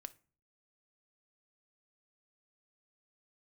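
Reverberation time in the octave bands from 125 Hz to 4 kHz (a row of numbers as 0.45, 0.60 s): 0.65, 0.55, 0.40, 0.40, 0.35, 0.25 s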